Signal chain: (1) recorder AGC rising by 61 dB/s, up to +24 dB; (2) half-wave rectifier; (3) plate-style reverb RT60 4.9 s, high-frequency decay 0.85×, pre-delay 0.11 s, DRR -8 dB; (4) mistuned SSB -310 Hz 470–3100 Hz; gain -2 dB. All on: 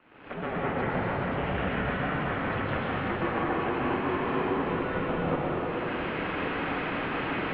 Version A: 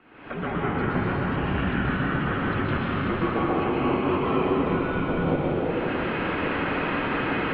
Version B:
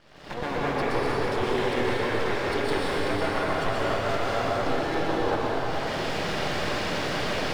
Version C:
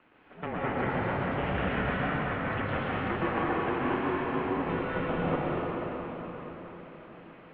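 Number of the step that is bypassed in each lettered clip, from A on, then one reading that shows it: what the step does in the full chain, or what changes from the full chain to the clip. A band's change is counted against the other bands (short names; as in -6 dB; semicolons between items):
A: 2, 125 Hz band +2.5 dB; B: 4, 4 kHz band +7.5 dB; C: 1, momentary loudness spread change +11 LU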